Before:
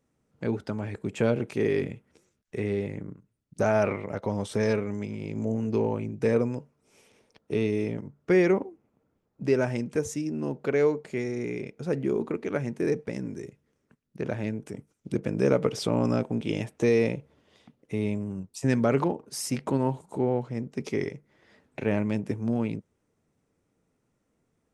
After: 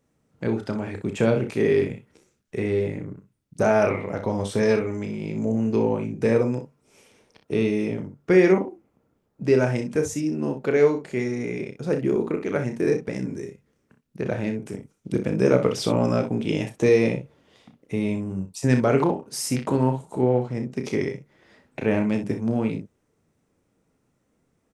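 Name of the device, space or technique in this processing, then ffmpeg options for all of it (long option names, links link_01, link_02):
slapback doubling: -filter_complex "[0:a]asplit=3[link_01][link_02][link_03];[link_02]adelay=32,volume=-8dB[link_04];[link_03]adelay=62,volume=-10dB[link_05];[link_01][link_04][link_05]amix=inputs=3:normalize=0,volume=3.5dB"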